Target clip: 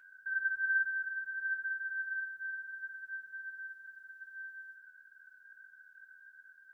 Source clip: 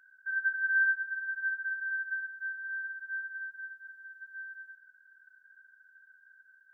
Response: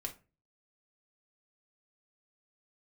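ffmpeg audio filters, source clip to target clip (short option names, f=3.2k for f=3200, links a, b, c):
-filter_complex "[1:a]atrim=start_sample=2205[a];[0:a][a]afir=irnorm=-1:irlink=0,volume=6dB"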